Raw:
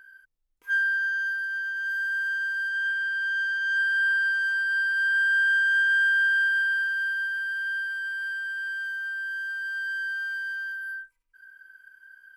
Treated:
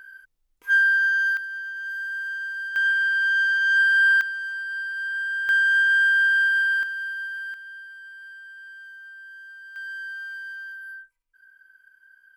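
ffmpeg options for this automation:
-af "asetnsamples=n=441:p=0,asendcmd='1.37 volume volume -2.5dB;2.76 volume volume 6dB;4.21 volume volume -5dB;5.49 volume volume 3dB;6.83 volume volume -3dB;7.54 volume volume -11dB;9.76 volume volume -4dB',volume=6dB"

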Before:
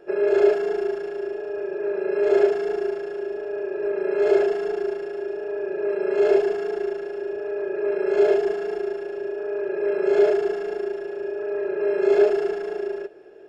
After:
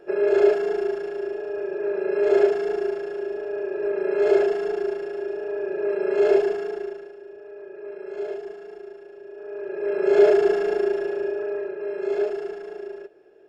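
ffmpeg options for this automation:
-af "volume=17.5dB,afade=t=out:st=6.44:d=0.73:silence=0.237137,afade=t=in:st=9.26:d=0.55:silence=0.354813,afade=t=in:st=9.81:d=0.7:silence=0.375837,afade=t=out:st=11.05:d=0.71:silence=0.251189"

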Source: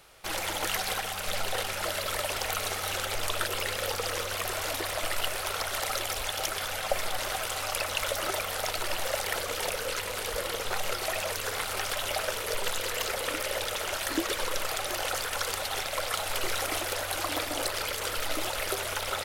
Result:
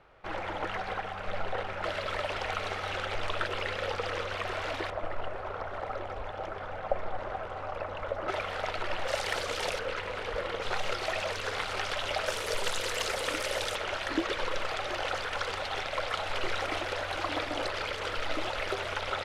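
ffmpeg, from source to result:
-af "asetnsamples=n=441:p=0,asendcmd='1.84 lowpass f 2800;4.9 lowpass f 1100;8.28 lowpass f 2600;9.08 lowpass f 5800;9.79 lowpass f 2500;10.62 lowpass f 4300;12.26 lowpass f 7800;13.76 lowpass f 3400',lowpass=1.7k"

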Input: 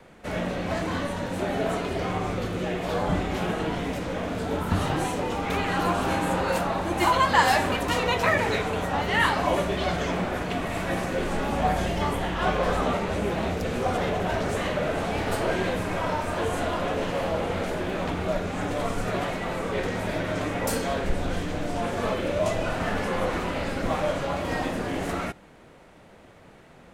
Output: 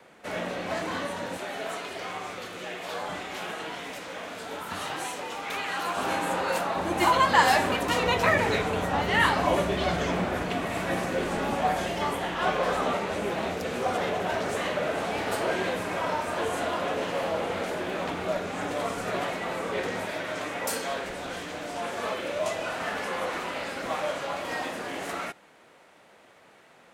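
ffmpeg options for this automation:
-af "asetnsamples=n=441:p=0,asendcmd='1.37 highpass f 1300;5.97 highpass f 490;6.77 highpass f 160;8.01 highpass f 59;10.48 highpass f 150;11.55 highpass f 340;20.05 highpass f 730',highpass=f=430:p=1"

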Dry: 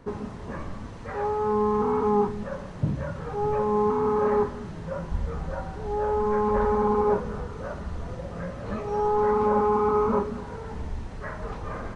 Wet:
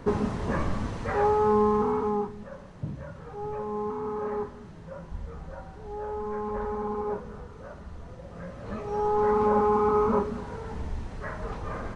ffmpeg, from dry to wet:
-af "volume=15dB,afade=t=out:st=0.81:d=1.03:silence=0.398107,afade=t=out:st=1.84:d=0.44:silence=0.421697,afade=t=in:st=8.18:d=1.19:silence=0.398107"

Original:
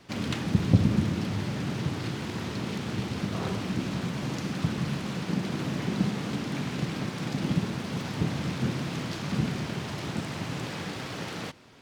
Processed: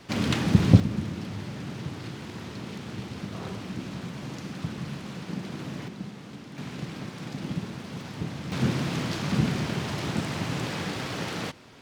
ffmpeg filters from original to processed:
-af "asetnsamples=n=441:p=0,asendcmd='0.8 volume volume -5dB;5.88 volume volume -11dB;6.58 volume volume -5dB;8.52 volume volume 3.5dB',volume=5dB"

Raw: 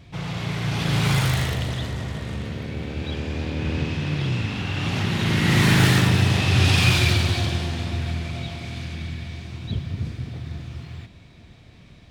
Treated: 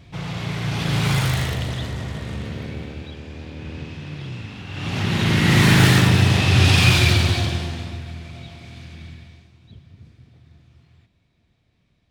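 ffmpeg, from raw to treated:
-af "volume=11.5dB,afade=t=out:st=2.65:d=0.48:silence=0.375837,afade=t=in:st=4.67:d=0.49:silence=0.281838,afade=t=out:st=7.27:d=0.77:silence=0.316228,afade=t=out:st=9.08:d=0.44:silence=0.298538"

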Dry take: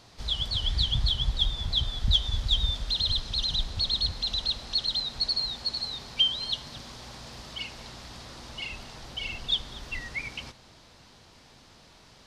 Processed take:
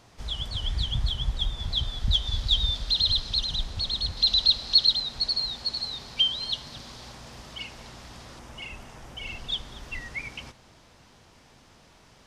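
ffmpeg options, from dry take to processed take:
-af "asetnsamples=n=441:p=0,asendcmd='1.6 equalizer g -2;2.27 equalizer g 4.5;3.39 equalizer g -2;4.17 equalizer g 9;4.93 equalizer g 1;7.12 equalizer g -5;8.39 equalizer g -13.5;9.27 equalizer g -6',equalizer=f=4.2k:t=o:w=0.63:g=-8"

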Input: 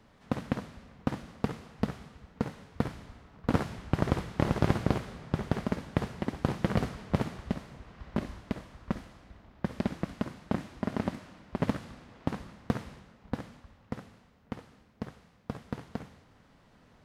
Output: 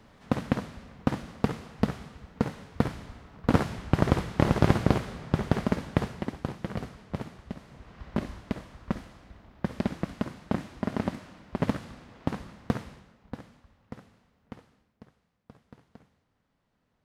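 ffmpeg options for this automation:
-af "volume=12.5dB,afade=t=out:st=5.87:d=0.66:silence=0.298538,afade=t=in:st=7.55:d=0.44:silence=0.398107,afade=t=out:st=12.69:d=0.65:silence=0.446684,afade=t=out:st=14.55:d=0.52:silence=0.316228"

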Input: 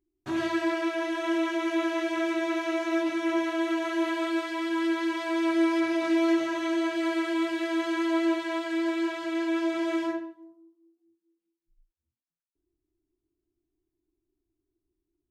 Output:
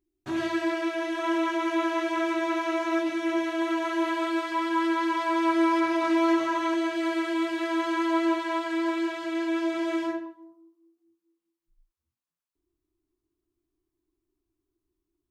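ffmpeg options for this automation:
-af "asetnsamples=n=441:p=0,asendcmd='1.19 equalizer g 8.5;2.99 equalizer g -1;3.62 equalizer g 6.5;4.52 equalizer g 13;6.74 equalizer g 2.5;7.58 equalizer g 9;8.98 equalizer g 1;10.26 equalizer g 7.5',equalizer=f=1.1k:t=o:w=0.5:g=-1"

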